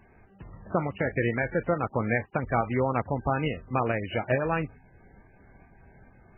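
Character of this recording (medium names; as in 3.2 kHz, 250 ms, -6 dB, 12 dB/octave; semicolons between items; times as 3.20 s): tremolo saw up 2.3 Hz, depth 40%; MP3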